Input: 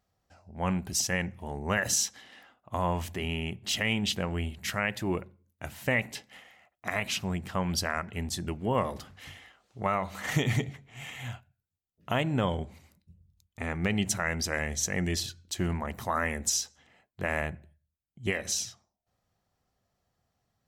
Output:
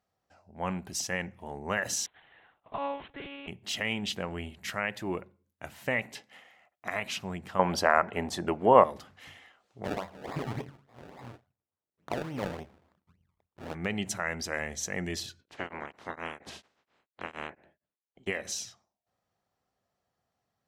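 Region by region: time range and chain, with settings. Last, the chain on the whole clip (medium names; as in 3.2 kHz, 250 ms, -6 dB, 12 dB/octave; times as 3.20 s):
2.06–3.48 s: dead-time distortion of 0.11 ms + bass shelf 160 Hz -11.5 dB + monotone LPC vocoder at 8 kHz 280 Hz
7.59–8.84 s: de-esser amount 30% + peaking EQ 730 Hz +13 dB 3 oct
9.84–13.75 s: partial rectifier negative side -7 dB + decimation with a swept rate 29× 3.5 Hz + treble shelf 5.1 kHz -9 dB
15.39–18.26 s: spectral peaks clipped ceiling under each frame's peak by 27 dB + tape spacing loss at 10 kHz 24 dB + tremolo of two beating tones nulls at 4.3 Hz
whole clip: high-pass 580 Hz 6 dB/octave; tilt EQ -2 dB/octave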